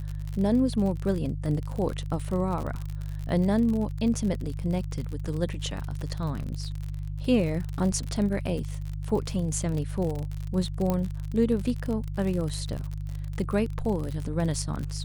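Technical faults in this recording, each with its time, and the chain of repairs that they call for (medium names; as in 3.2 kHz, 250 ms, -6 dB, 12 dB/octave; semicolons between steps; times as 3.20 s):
crackle 50 per s -31 dBFS
hum 50 Hz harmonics 3 -33 dBFS
10.90 s: pop -14 dBFS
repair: de-click; de-hum 50 Hz, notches 3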